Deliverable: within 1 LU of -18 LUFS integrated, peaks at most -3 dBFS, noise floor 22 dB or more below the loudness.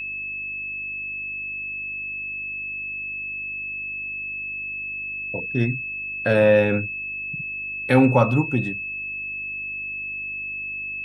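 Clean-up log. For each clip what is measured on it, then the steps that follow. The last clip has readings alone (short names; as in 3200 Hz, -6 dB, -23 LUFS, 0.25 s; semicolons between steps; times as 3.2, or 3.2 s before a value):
hum 50 Hz; harmonics up to 350 Hz; hum level -50 dBFS; steady tone 2600 Hz; tone level -28 dBFS; loudness -24.5 LUFS; peak -3.5 dBFS; loudness target -18.0 LUFS
-> de-hum 50 Hz, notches 7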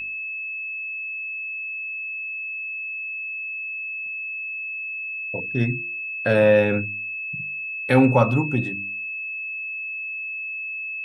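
hum none; steady tone 2600 Hz; tone level -28 dBFS
-> notch 2600 Hz, Q 30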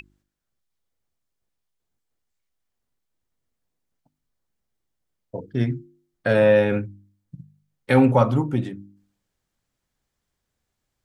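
steady tone none; loudness -20.5 LUFS; peak -4.0 dBFS; loudness target -18.0 LUFS
-> gain +2.5 dB; limiter -3 dBFS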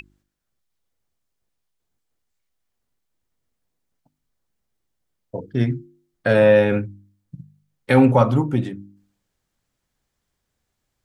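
loudness -18.0 LUFS; peak -3.0 dBFS; noise floor -77 dBFS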